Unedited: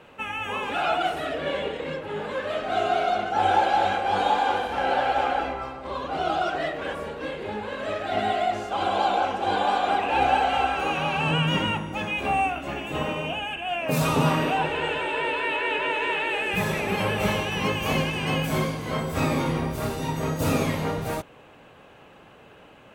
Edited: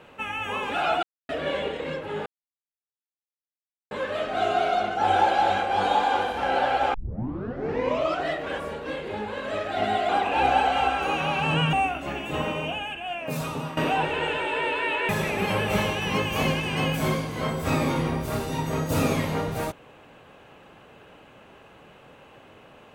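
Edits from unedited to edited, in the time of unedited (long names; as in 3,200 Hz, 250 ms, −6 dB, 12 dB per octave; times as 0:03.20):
0:01.03–0:01.29: silence
0:02.26: splice in silence 1.65 s
0:05.29: tape start 1.28 s
0:08.44–0:09.86: remove
0:11.50–0:12.34: remove
0:13.24–0:14.38: fade out, to −15 dB
0:15.70–0:16.59: remove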